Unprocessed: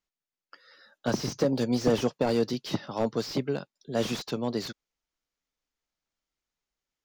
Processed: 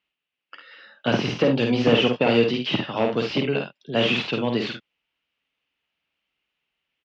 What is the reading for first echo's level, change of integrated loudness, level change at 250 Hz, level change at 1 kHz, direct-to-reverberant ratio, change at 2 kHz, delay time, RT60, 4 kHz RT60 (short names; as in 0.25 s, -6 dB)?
-4.5 dB, +7.0 dB, +6.0 dB, +7.0 dB, none, +14.0 dB, 51 ms, none, none